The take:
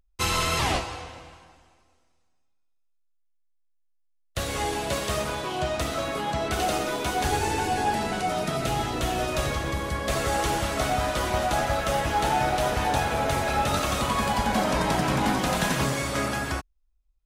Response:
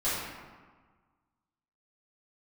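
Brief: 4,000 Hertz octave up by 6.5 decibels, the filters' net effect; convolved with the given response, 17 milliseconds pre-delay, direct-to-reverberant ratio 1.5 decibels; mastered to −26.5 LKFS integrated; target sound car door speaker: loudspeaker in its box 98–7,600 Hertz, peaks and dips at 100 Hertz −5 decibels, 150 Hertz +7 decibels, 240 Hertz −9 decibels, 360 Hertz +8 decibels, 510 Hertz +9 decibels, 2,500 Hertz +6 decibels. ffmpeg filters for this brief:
-filter_complex "[0:a]equalizer=frequency=4000:width_type=o:gain=7,asplit=2[link_01][link_02];[1:a]atrim=start_sample=2205,adelay=17[link_03];[link_02][link_03]afir=irnorm=-1:irlink=0,volume=-11.5dB[link_04];[link_01][link_04]amix=inputs=2:normalize=0,highpass=98,equalizer=frequency=100:width_type=q:width=4:gain=-5,equalizer=frequency=150:width_type=q:width=4:gain=7,equalizer=frequency=240:width_type=q:width=4:gain=-9,equalizer=frequency=360:width_type=q:width=4:gain=8,equalizer=frequency=510:width_type=q:width=4:gain=9,equalizer=frequency=2500:width_type=q:width=4:gain=6,lowpass=frequency=7600:width=0.5412,lowpass=frequency=7600:width=1.3066,volume=-5.5dB"

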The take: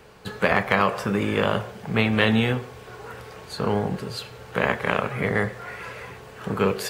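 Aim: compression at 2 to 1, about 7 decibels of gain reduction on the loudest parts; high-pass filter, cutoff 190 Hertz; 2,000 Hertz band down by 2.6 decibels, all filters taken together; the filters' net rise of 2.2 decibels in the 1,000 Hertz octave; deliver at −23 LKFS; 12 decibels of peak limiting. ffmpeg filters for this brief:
ffmpeg -i in.wav -af "highpass=190,equalizer=frequency=1000:width_type=o:gain=4,equalizer=frequency=2000:width_type=o:gain=-4.5,acompressor=threshold=-29dB:ratio=2,volume=12.5dB,alimiter=limit=-10.5dB:level=0:latency=1" out.wav

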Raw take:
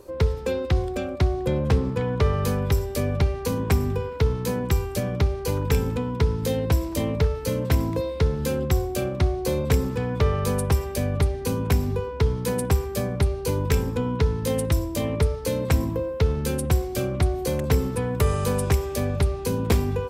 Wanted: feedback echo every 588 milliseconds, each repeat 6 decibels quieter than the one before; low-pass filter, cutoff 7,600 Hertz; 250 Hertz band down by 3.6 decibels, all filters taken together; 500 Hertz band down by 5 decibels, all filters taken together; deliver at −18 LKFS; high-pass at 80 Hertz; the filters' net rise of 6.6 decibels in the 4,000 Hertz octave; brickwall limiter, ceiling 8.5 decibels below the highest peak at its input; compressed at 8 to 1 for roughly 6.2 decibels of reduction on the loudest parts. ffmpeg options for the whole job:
ffmpeg -i in.wav -af "highpass=80,lowpass=7600,equalizer=frequency=250:width_type=o:gain=-3.5,equalizer=frequency=500:width_type=o:gain=-5,equalizer=frequency=4000:width_type=o:gain=8.5,acompressor=threshold=-25dB:ratio=8,alimiter=limit=-20.5dB:level=0:latency=1,aecho=1:1:588|1176|1764|2352|2940|3528:0.501|0.251|0.125|0.0626|0.0313|0.0157,volume=13dB" out.wav

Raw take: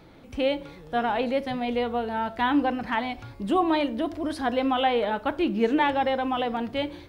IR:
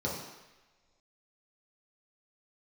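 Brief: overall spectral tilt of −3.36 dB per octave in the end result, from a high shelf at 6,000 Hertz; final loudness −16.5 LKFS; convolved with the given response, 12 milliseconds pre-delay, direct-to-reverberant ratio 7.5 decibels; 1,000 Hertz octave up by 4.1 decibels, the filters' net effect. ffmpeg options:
-filter_complex "[0:a]equalizer=frequency=1000:width_type=o:gain=5.5,highshelf=frequency=6000:gain=-5,asplit=2[link_01][link_02];[1:a]atrim=start_sample=2205,adelay=12[link_03];[link_02][link_03]afir=irnorm=-1:irlink=0,volume=-14dB[link_04];[link_01][link_04]amix=inputs=2:normalize=0,volume=6dB"

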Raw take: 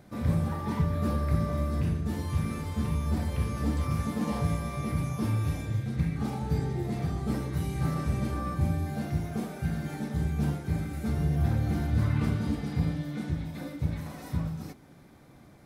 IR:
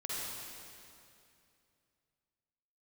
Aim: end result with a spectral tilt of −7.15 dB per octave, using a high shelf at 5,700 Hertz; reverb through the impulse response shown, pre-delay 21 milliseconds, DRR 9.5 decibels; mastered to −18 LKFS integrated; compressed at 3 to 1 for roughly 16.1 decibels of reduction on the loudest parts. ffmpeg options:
-filter_complex "[0:a]highshelf=frequency=5700:gain=8.5,acompressor=threshold=-45dB:ratio=3,asplit=2[link_01][link_02];[1:a]atrim=start_sample=2205,adelay=21[link_03];[link_02][link_03]afir=irnorm=-1:irlink=0,volume=-12.5dB[link_04];[link_01][link_04]amix=inputs=2:normalize=0,volume=26dB"

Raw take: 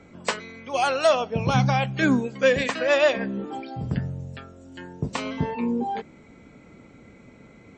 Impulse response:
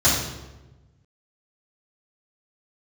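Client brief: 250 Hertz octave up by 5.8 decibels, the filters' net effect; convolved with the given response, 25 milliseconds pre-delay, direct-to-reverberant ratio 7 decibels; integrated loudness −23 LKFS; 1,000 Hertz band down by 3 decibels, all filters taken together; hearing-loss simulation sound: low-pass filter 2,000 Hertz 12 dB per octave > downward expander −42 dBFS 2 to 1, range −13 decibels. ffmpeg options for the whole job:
-filter_complex "[0:a]equalizer=frequency=250:width_type=o:gain=7,equalizer=frequency=1000:width_type=o:gain=-4.5,asplit=2[link_01][link_02];[1:a]atrim=start_sample=2205,adelay=25[link_03];[link_02][link_03]afir=irnorm=-1:irlink=0,volume=-25.5dB[link_04];[link_01][link_04]amix=inputs=2:normalize=0,lowpass=2000,agate=range=-13dB:threshold=-42dB:ratio=2,volume=-3.5dB"

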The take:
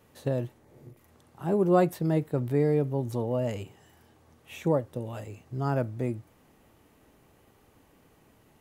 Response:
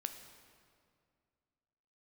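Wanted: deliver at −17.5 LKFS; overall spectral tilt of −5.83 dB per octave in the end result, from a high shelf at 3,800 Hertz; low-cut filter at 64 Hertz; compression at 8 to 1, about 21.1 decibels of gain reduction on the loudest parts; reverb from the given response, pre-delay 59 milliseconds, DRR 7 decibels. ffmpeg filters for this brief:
-filter_complex "[0:a]highpass=64,highshelf=frequency=3800:gain=7.5,acompressor=threshold=-39dB:ratio=8,asplit=2[link_01][link_02];[1:a]atrim=start_sample=2205,adelay=59[link_03];[link_02][link_03]afir=irnorm=-1:irlink=0,volume=-5.5dB[link_04];[link_01][link_04]amix=inputs=2:normalize=0,volume=26dB"

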